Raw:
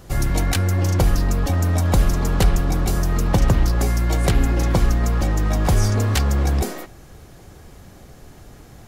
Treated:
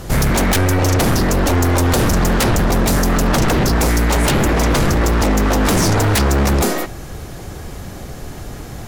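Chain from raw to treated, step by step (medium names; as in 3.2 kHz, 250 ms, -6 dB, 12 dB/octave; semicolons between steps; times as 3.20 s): sine folder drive 15 dB, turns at -5 dBFS; trim -6 dB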